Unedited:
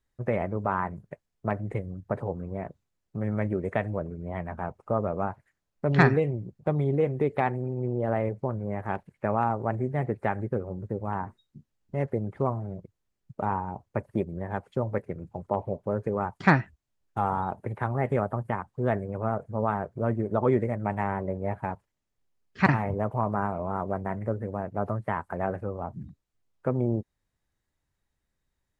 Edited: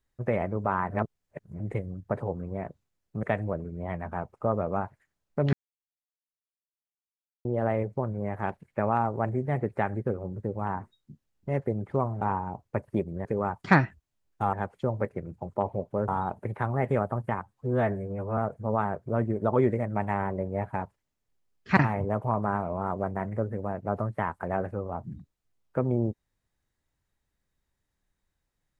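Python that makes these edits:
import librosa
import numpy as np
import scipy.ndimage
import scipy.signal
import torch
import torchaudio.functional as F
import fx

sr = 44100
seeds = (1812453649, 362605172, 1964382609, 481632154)

y = fx.edit(x, sr, fx.reverse_span(start_s=0.9, length_s=0.7),
    fx.cut(start_s=3.23, length_s=0.46),
    fx.silence(start_s=5.99, length_s=1.92),
    fx.cut(start_s=12.67, length_s=0.75),
    fx.move(start_s=16.01, length_s=1.28, to_s=14.46),
    fx.stretch_span(start_s=18.64, length_s=0.63, factor=1.5), tone=tone)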